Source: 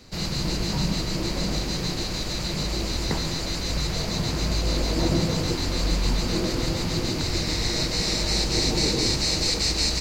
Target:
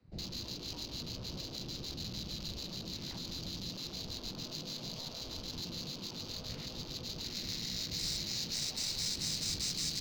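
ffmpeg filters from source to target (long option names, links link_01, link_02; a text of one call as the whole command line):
ffmpeg -i in.wav -filter_complex "[0:a]afwtdn=0.02,afftfilt=real='re*lt(hypot(re,im),0.2)':imag='im*lt(hypot(re,im),0.2)':win_size=1024:overlap=0.75,acrossover=split=220|3000[link_01][link_02][link_03];[link_02]acompressor=threshold=-57dB:ratio=2[link_04];[link_01][link_04][link_03]amix=inputs=3:normalize=0,acrossover=split=230|3700[link_05][link_06][link_07];[link_06]alimiter=level_in=11.5dB:limit=-24dB:level=0:latency=1:release=22,volume=-11.5dB[link_08];[link_05][link_08][link_07]amix=inputs=3:normalize=0,adynamicsmooth=sensitivity=6.5:basefreq=2500,volume=-4.5dB" out.wav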